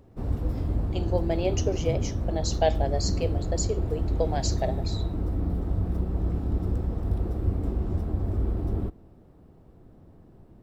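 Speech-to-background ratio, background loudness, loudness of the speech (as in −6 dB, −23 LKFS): −1.0 dB, −29.5 LKFS, −30.5 LKFS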